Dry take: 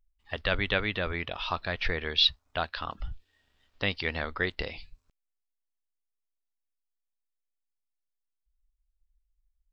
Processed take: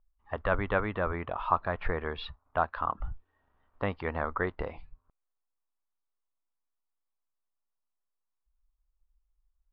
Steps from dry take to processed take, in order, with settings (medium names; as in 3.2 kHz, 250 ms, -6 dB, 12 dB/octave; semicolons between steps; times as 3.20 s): resonant low-pass 1.1 kHz, resonance Q 2.4